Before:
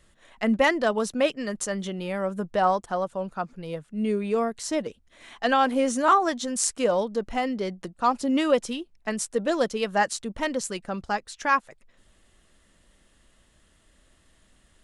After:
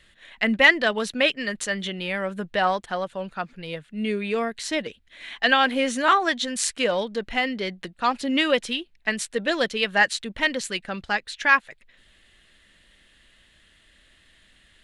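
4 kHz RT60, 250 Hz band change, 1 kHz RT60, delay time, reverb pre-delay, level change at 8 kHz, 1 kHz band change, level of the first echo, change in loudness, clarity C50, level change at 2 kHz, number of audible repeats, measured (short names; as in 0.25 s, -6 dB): none, -1.0 dB, none, none, none, -1.0 dB, -0.5 dB, none, +2.5 dB, none, +9.0 dB, none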